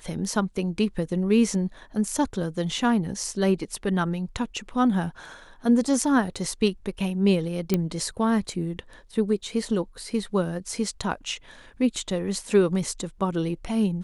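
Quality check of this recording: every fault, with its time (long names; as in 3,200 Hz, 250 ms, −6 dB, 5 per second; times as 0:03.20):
0:07.74: click −9 dBFS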